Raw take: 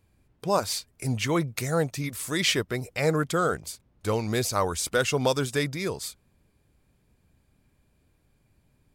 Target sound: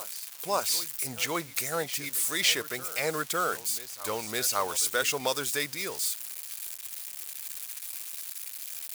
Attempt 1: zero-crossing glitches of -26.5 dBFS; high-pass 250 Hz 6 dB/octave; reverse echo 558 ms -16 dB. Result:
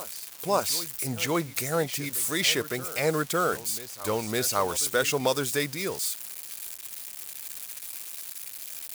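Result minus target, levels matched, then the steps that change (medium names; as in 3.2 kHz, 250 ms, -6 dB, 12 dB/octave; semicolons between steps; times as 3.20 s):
250 Hz band +6.5 dB
change: high-pass 910 Hz 6 dB/octave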